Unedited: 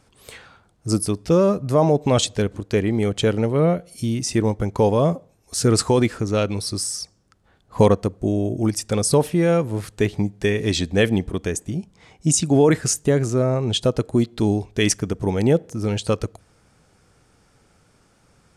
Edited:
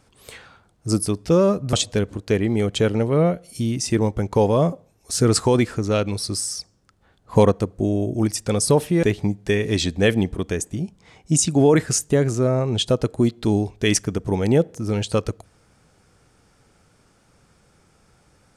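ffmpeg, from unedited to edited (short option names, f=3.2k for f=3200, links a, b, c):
-filter_complex "[0:a]asplit=3[a][b][c];[a]atrim=end=1.732[d];[b]atrim=start=2.158:end=9.462[e];[c]atrim=start=9.978[f];[d][e]acrossfade=d=0.004:c1=hsin:c2=hsin[g];[g][f]acrossfade=d=0.004:c1=hsin:c2=hsin"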